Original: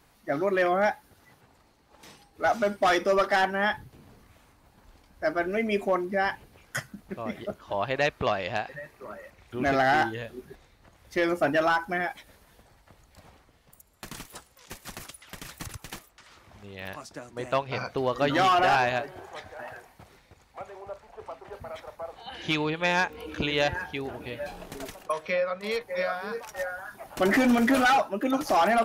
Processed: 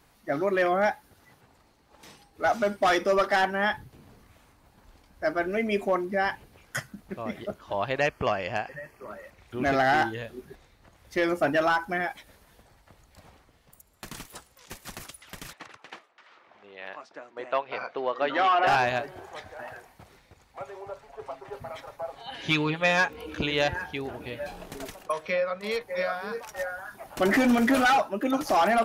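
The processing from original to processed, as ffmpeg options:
ffmpeg -i in.wav -filter_complex "[0:a]asettb=1/sr,asplit=3[link_01][link_02][link_03];[link_01]atrim=end=8.004[link_04];[link_02]atrim=start=8:end=9.08,asetpts=PTS-STARTPTS,afade=type=in:duration=0.004:curve=qsin,afade=type=out:start_time=1.076:duration=0.004:curve=qsin,asuperstop=centerf=3800:order=4:qfactor=3.8[link_05];[link_03]atrim=start=9.076[link_06];[link_04][link_05]acrossfade=duration=0.004:curve1=hsin:curve2=qsin[link_07];[link_07][link_06]acrossfade=duration=0.004:curve1=qsin:curve2=hsin,asettb=1/sr,asplit=3[link_08][link_09][link_10];[link_08]atrim=end=15.534[link_11];[link_09]atrim=start=15.53:end=18.67,asetpts=PTS-STARTPTS,afade=type=in:duration=0.004:curve=qsin,afade=type=out:start_time=3.136:duration=0.004:curve=qsin,highpass=420,lowpass=2900[link_12];[link_10]atrim=start=18.666[link_13];[link_11][link_12]acrossfade=duration=0.004:curve1=hsin:curve2=qsin[link_14];[link_14][link_13]acrossfade=duration=0.004:curve1=qsin:curve2=hsin,asettb=1/sr,asplit=3[link_15][link_16][link_17];[link_15]atrim=end=20.604[link_18];[link_16]atrim=start=20.6:end=23.13,asetpts=PTS-STARTPTS,afade=type=in:duration=0.004:curve=qsin,afade=type=out:start_time=2.526:duration=0.004:curve=qsin,aecho=1:1:7.3:0.65,atrim=end_sample=111573[link_19];[link_17]atrim=start=23.126[link_20];[link_18][link_19]acrossfade=duration=0.004:curve1=hsin:curve2=qsin[link_21];[link_21][link_20]acrossfade=duration=0.004:curve1=qsin:curve2=hsin" out.wav

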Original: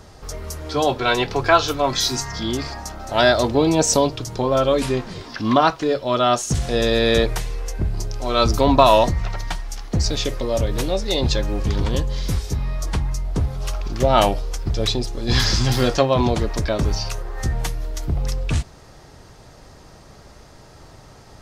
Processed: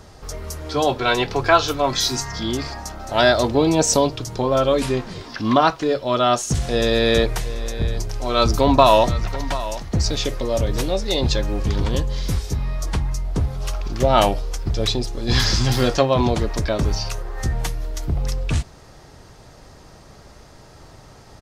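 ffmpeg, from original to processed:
ffmpeg -i in.wav -filter_complex "[0:a]asplit=3[link_01][link_02][link_03];[link_01]afade=type=out:start_time=7.33:duration=0.02[link_04];[link_02]aecho=1:1:735:0.178,afade=type=in:start_time=7.33:duration=0.02,afade=type=out:start_time=10.81:duration=0.02[link_05];[link_03]afade=type=in:start_time=10.81:duration=0.02[link_06];[link_04][link_05][link_06]amix=inputs=3:normalize=0" out.wav

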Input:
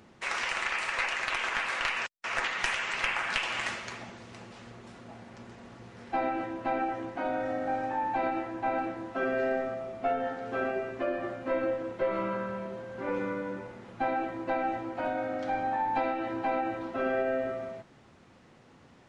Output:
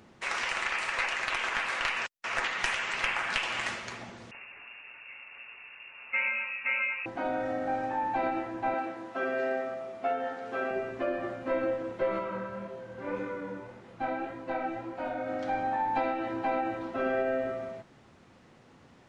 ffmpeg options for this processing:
ffmpeg -i in.wav -filter_complex "[0:a]asettb=1/sr,asplit=3[link_01][link_02][link_03];[link_01]atrim=end=4.314[link_04];[link_02]atrim=start=4.31:end=7.06,asetpts=PTS-STARTPTS,afade=type=in:duration=0.004:curve=qsin,afade=type=out:start_time=2.746:duration=0.004:curve=qsin,lowpass=frequency=2500:width_type=q:width=0.5098,lowpass=frequency=2500:width_type=q:width=0.6013,lowpass=frequency=2500:width_type=q:width=0.9,lowpass=frequency=2500:width_type=q:width=2.563,afreqshift=-2900[link_05];[link_03]atrim=start=7.056[link_06];[link_04][link_05]acrossfade=duration=0.004:curve1=hsin:curve2=qsin[link_07];[link_07][link_06]acrossfade=duration=0.004:curve1=qsin:curve2=hsin,asettb=1/sr,asplit=3[link_08][link_09][link_10];[link_08]atrim=end=8.744[link_11];[link_09]atrim=start=8.74:end=10.71,asetpts=PTS-STARTPTS,afade=type=in:duration=0.004:curve=qsin,afade=type=out:start_time=1.966:duration=0.004:curve=qsin,highpass=frequency=350:poles=1[link_12];[link_10]atrim=start=10.706[link_13];[link_11][link_12]acrossfade=duration=0.004:curve1=hsin:curve2=qsin[link_14];[link_14][link_13]acrossfade=duration=0.004:curve1=qsin:curve2=hsin,asplit=3[link_15][link_16][link_17];[link_15]afade=type=out:start_time=12.18:duration=0.02[link_18];[link_16]flanger=delay=22.5:depth=5:speed=1.8,afade=type=in:start_time=12.18:duration=0.02,afade=type=out:start_time=15.26:duration=0.02[link_19];[link_17]afade=type=in:start_time=15.26:duration=0.02[link_20];[link_18][link_19][link_20]amix=inputs=3:normalize=0" out.wav

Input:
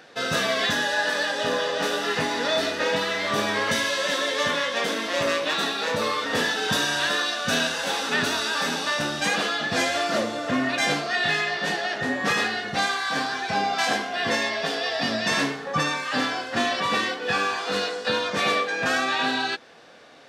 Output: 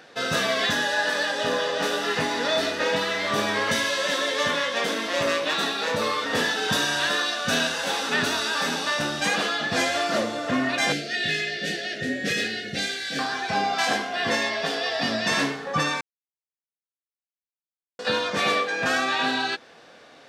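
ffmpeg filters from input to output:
ffmpeg -i in.wav -filter_complex "[0:a]asettb=1/sr,asplit=3[link_01][link_02][link_03];[link_01]atrim=end=10.924[link_04];[link_02]atrim=start=10.92:end=13.19,asetpts=PTS-STARTPTS,afade=type=in:duration=0.004:curve=qsin,afade=type=out:start_time=2.266:duration=0.004:curve=qsin,asuperstop=centerf=1000:order=4:qfactor=0.81[link_05];[link_03]atrim=start=13.186[link_06];[link_04][link_05]acrossfade=duration=0.004:curve1=hsin:curve2=qsin[link_07];[link_07][link_06]acrossfade=duration=0.004:curve1=qsin:curve2=hsin,asplit=3[link_08][link_09][link_10];[link_08]atrim=end=16.01,asetpts=PTS-STARTPTS,afade=type=out:start_time=16.006:duration=0.004:curve=hsin[link_11];[link_09]atrim=start=16.01:end=17.99,asetpts=PTS-STARTPTS,volume=0[link_12];[link_10]atrim=start=17.99,asetpts=PTS-STARTPTS,afade=type=in:duration=0.004:curve=hsin[link_13];[link_11][link_12][link_13]concat=n=3:v=0:a=1" out.wav

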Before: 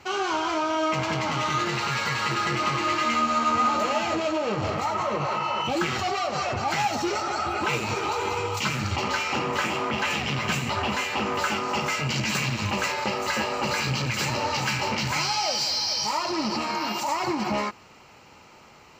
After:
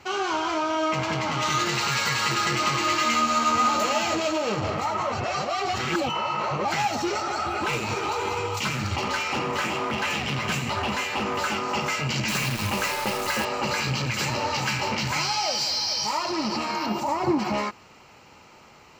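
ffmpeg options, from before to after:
ffmpeg -i in.wav -filter_complex "[0:a]asettb=1/sr,asplit=3[link_01][link_02][link_03];[link_01]atrim=end=1.424[link_04];[link_02]atrim=start=1.42:end=4.6,asetpts=PTS-STARTPTS,afade=type=in:duration=0.004:curve=qsin,afade=type=out:start_time=3.176:duration=0.004:curve=qsin,highshelf=frequency=4400:gain=10.5[link_05];[link_03]atrim=start=4.596[link_06];[link_04][link_05]acrossfade=duration=0.004:curve1=hsin:curve2=qsin[link_07];[link_07][link_06]acrossfade=duration=0.004:curve1=qsin:curve2=hsin,asettb=1/sr,asplit=3[link_08][link_09][link_10];[link_08]atrim=end=7.284[link_11];[link_09]atrim=start=7.28:end=11.56,asetpts=PTS-STARTPTS,afade=type=in:duration=0.004:curve=qsin,afade=type=out:start_time=4.276:duration=0.004:curve=qsin,asoftclip=type=hard:threshold=-20.5dB[link_12];[link_10]atrim=start=11.556[link_13];[link_11][link_12]acrossfade=duration=0.004:curve1=hsin:curve2=qsin[link_14];[link_14][link_13]acrossfade=duration=0.004:curve1=qsin:curve2=hsin,asettb=1/sr,asplit=3[link_15][link_16][link_17];[link_15]atrim=end=12.284[link_18];[link_16]atrim=start=12.28:end=13.45,asetpts=PTS-STARTPTS,afade=type=in:duration=0.004:curve=qsin,afade=type=out:start_time=1.166:duration=0.004:curve=qsin,acrusher=bits=6:dc=4:mix=0:aa=0.000001[link_19];[link_17]atrim=start=13.446[link_20];[link_18][link_19]acrossfade=duration=0.004:curve1=hsin:curve2=qsin[link_21];[link_21][link_20]acrossfade=duration=0.004:curve1=qsin:curve2=hsin,asettb=1/sr,asplit=3[link_22][link_23][link_24];[link_22]atrim=end=16.864[link_25];[link_23]atrim=start=16.86:end=17.39,asetpts=PTS-STARTPTS,afade=type=in:duration=0.004:curve=qsin,afade=type=out:start_time=0.526:duration=0.004:curve=qsin,tiltshelf=frequency=970:gain=7.5[link_26];[link_24]atrim=start=17.386[link_27];[link_25][link_26]acrossfade=duration=0.004:curve1=hsin:curve2=qsin[link_28];[link_28][link_27]acrossfade=duration=0.004:curve1=qsin:curve2=hsin,asplit=3[link_29][link_30][link_31];[link_29]atrim=end=5.122[link_32];[link_30]atrim=start=5.118:end=6.652,asetpts=PTS-STARTPTS,areverse[link_33];[link_31]atrim=start=6.648[link_34];[link_32][link_33]acrossfade=duration=0.004:curve1=hsin:curve2=hsin[link_35];[link_35][link_34]acrossfade=duration=0.004:curve1=hsin:curve2=hsin" out.wav

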